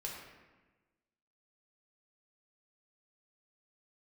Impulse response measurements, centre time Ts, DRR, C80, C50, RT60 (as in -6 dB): 62 ms, -3.0 dB, 4.0 dB, 2.0 dB, 1.2 s